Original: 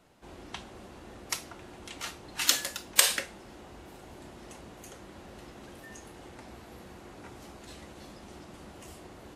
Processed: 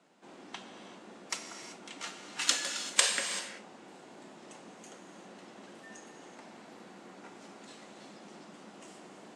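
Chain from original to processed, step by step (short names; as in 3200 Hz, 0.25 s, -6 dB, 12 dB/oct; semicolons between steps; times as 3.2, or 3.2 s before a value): Chebyshev band-pass 190–8300 Hz, order 3; non-linear reverb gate 0.41 s flat, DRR 5.5 dB; gain -2.5 dB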